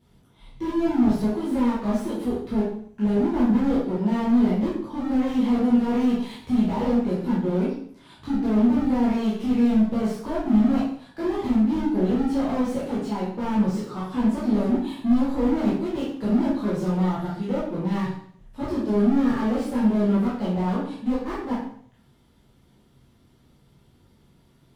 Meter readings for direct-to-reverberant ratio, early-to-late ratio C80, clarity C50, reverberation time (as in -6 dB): -9.0 dB, 6.0 dB, 1.5 dB, 0.60 s